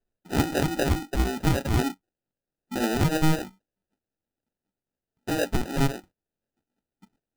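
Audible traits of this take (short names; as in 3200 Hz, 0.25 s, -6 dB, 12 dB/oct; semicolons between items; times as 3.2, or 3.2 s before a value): phasing stages 8, 3.9 Hz, lowest notch 530–1100 Hz; aliases and images of a low sample rate 1100 Hz, jitter 0%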